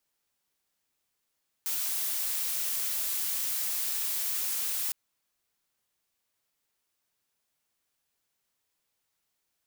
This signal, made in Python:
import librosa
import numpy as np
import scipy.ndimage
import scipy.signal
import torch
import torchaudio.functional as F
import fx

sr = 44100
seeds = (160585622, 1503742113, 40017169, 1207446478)

y = fx.noise_colour(sr, seeds[0], length_s=3.26, colour='blue', level_db=-31.0)